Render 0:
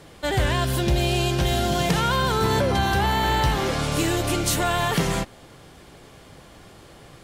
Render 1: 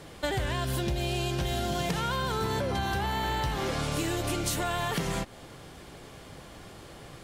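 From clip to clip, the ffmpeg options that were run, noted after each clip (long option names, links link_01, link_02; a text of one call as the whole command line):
ffmpeg -i in.wav -af "acompressor=threshold=-27dB:ratio=6" out.wav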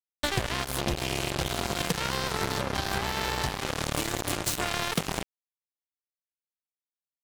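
ffmpeg -i in.wav -af "acrusher=bits=3:mix=0:aa=0.5,volume=4dB" out.wav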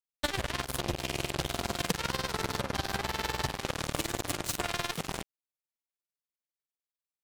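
ffmpeg -i in.wav -af "tremolo=f=20:d=0.84" out.wav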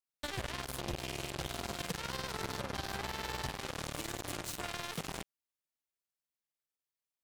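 ffmpeg -i in.wav -af "alimiter=limit=-23.5dB:level=0:latency=1:release=18,volume=-1dB" out.wav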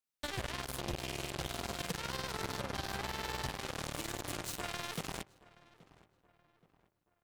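ffmpeg -i in.wav -filter_complex "[0:a]asplit=2[link_01][link_02];[link_02]adelay=826,lowpass=frequency=2300:poles=1,volume=-20.5dB,asplit=2[link_03][link_04];[link_04]adelay=826,lowpass=frequency=2300:poles=1,volume=0.44,asplit=2[link_05][link_06];[link_06]adelay=826,lowpass=frequency=2300:poles=1,volume=0.44[link_07];[link_01][link_03][link_05][link_07]amix=inputs=4:normalize=0" out.wav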